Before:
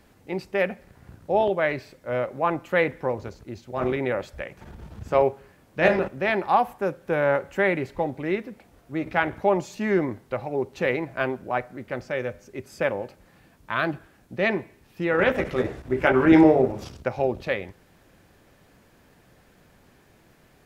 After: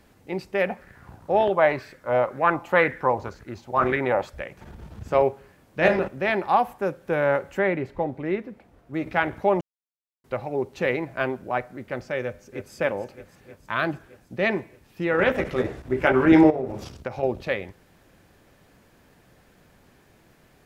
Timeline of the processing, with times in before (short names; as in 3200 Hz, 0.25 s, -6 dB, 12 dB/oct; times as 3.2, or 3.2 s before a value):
0.67–4.3 LFO bell 2 Hz 790–1800 Hz +13 dB
7.59–8.94 high shelf 3200 Hz -11 dB
9.61–10.24 mute
12.21–12.73 echo throw 0.31 s, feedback 75%, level -10 dB
16.5–17.23 compressor 4:1, threshold -25 dBFS